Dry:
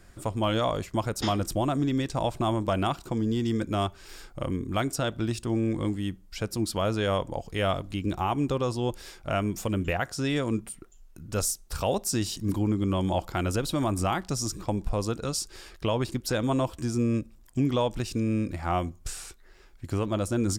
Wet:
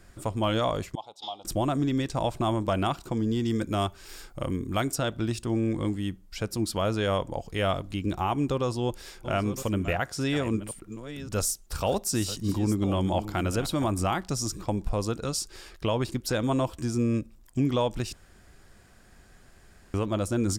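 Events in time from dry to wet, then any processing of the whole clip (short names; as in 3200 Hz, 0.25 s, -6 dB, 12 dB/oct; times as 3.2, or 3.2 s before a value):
0.95–1.45 double band-pass 1700 Hz, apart 2.1 oct
3.5–4.95 high shelf 7700 Hz +6 dB
8.52–13.87 reverse delay 0.554 s, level -12 dB
18.13–19.94 room tone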